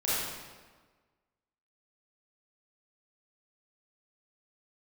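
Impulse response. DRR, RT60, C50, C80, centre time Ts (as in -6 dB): -10.5 dB, 1.4 s, -4.5 dB, -0.5 dB, 0.112 s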